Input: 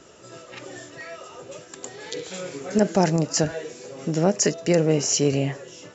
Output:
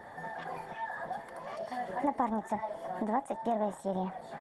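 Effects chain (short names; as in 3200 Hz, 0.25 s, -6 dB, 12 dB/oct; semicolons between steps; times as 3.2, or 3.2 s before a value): low shelf 430 Hz -7 dB; comb 1.5 ms, depth 49%; compressor 2.5:1, threshold -40 dBFS, peak gain reduction 15.5 dB; wide varispeed 1.35×; polynomial smoothing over 41 samples; gain +6.5 dB; Opus 16 kbps 48000 Hz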